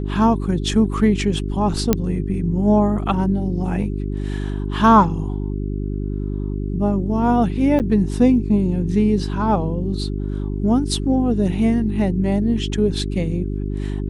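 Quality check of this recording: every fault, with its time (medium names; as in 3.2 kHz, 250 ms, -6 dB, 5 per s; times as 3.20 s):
hum 50 Hz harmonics 8 -24 dBFS
1.93 s: pop -2 dBFS
7.79–7.80 s: dropout 8.3 ms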